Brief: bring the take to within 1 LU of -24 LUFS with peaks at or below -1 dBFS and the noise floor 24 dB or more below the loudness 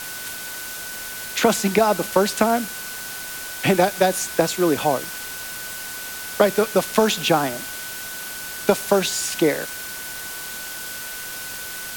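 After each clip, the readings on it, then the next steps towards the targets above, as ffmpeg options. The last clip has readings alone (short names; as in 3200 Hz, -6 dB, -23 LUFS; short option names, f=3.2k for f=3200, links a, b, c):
steady tone 1500 Hz; tone level -36 dBFS; noise floor -33 dBFS; noise floor target -47 dBFS; loudness -22.5 LUFS; peak -1.5 dBFS; loudness target -24.0 LUFS
-> -af "bandreject=f=1.5k:w=30"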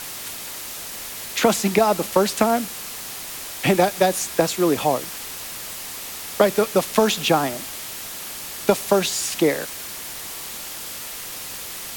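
steady tone none; noise floor -34 dBFS; noise floor target -47 dBFS
-> -af "afftdn=nr=13:nf=-34"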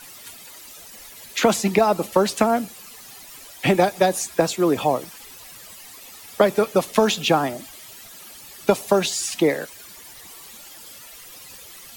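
noise floor -43 dBFS; noise floor target -45 dBFS
-> -af "afftdn=nr=6:nf=-43"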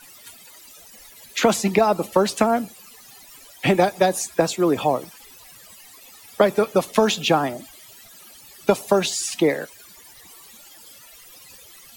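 noise floor -47 dBFS; loudness -21.0 LUFS; peak -1.5 dBFS; loudness target -24.0 LUFS
-> -af "volume=-3dB"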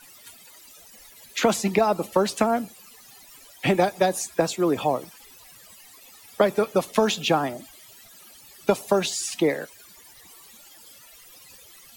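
loudness -24.0 LUFS; peak -4.5 dBFS; noise floor -50 dBFS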